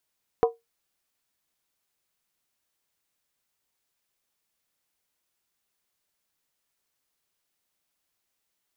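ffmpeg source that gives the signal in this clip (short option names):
-f lavfi -i "aevalsrc='0.224*pow(10,-3*t/0.18)*sin(2*PI*462*t)+0.112*pow(10,-3*t/0.143)*sin(2*PI*736.4*t)+0.0562*pow(10,-3*t/0.123)*sin(2*PI*986.8*t)+0.0282*pow(10,-3*t/0.119)*sin(2*PI*1060.8*t)+0.0141*pow(10,-3*t/0.111)*sin(2*PI*1225.7*t)':d=0.63:s=44100"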